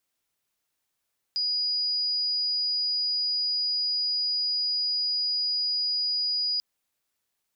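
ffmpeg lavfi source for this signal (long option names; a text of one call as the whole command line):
ffmpeg -f lavfi -i "sine=frequency=4910:duration=5.24:sample_rate=44100,volume=-5.94dB" out.wav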